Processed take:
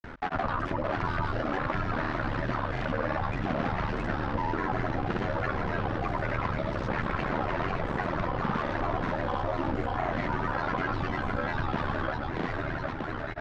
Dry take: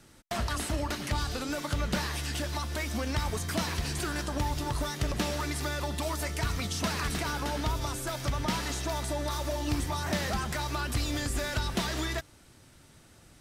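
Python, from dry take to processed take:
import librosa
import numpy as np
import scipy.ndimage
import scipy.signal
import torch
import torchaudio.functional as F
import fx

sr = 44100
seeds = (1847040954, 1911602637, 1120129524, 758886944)

p1 = fx.rider(x, sr, range_db=10, speed_s=0.5)
p2 = p1 + fx.echo_feedback(p1, sr, ms=578, feedback_pct=58, wet_db=-4.0, dry=0)
p3 = p2 * np.sin(2.0 * np.pi * 38.0 * np.arange(len(p2)) / sr)
p4 = fx.curve_eq(p3, sr, hz=(110.0, 1500.0, 7800.0), db=(0, 6, -19))
p5 = fx.granulator(p4, sr, seeds[0], grain_ms=100.0, per_s=20.0, spray_ms=100.0, spread_st=3)
p6 = fx.air_absorb(p5, sr, metres=110.0)
y = fx.env_flatten(p6, sr, amount_pct=50)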